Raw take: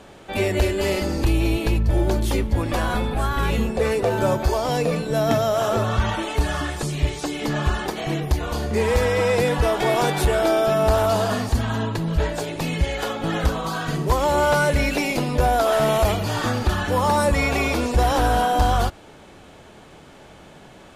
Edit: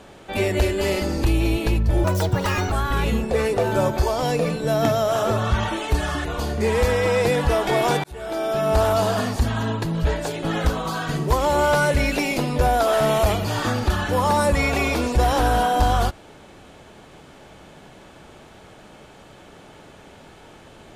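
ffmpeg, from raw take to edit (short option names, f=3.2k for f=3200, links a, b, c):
-filter_complex "[0:a]asplit=6[a][b][c][d][e][f];[a]atrim=end=2.044[g];[b]atrim=start=2.04:end=3.18,asetpts=PTS-STARTPTS,asetrate=74088,aresample=44100[h];[c]atrim=start=3.176:end=6.712[i];[d]atrim=start=8.378:end=10.17,asetpts=PTS-STARTPTS,afade=t=out:st=1.788:d=0.004:c=hsin[j];[e]atrim=start=10.17:end=12.562,asetpts=PTS-STARTPTS,afade=t=in:d=0.75[k];[f]atrim=start=13.218[l];[g][h]acrossfade=d=0.004:c1=hsin:c2=hsin[m];[m][i]acrossfade=d=0.004:c1=hsin:c2=hsin[n];[j][k]concat=n=2:v=0:a=1[o];[n][o]acrossfade=d=0.004:c1=hsin:c2=hsin[p];[p][l]acrossfade=d=0.004:c1=hsin:c2=hsin"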